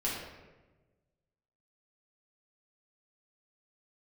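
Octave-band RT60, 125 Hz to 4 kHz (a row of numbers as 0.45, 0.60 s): 1.8, 1.5, 1.4, 1.1, 1.0, 0.75 s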